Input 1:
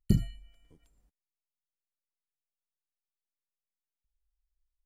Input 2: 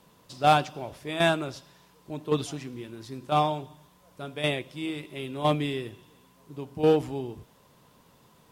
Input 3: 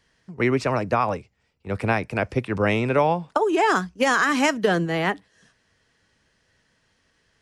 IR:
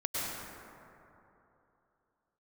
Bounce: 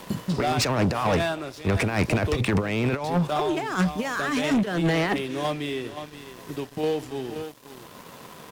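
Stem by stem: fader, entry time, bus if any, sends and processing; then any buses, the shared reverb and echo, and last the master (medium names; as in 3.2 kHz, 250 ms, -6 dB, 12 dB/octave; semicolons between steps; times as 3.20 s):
-9.5 dB, 0.00 s, no send, no echo send, high-pass 200 Hz
-9.5 dB, 0.00 s, muted 2.41–3.04 s, no send, echo send -11 dB, bass shelf 160 Hz -9 dB; band-stop 880 Hz, Q 17; three bands compressed up and down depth 70%
-2.5 dB, 0.00 s, no send, no echo send, peaking EQ 590 Hz -2 dB 1.4 oct; compressor with a negative ratio -28 dBFS, ratio -0.5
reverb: none
echo: delay 525 ms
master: waveshaping leveller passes 3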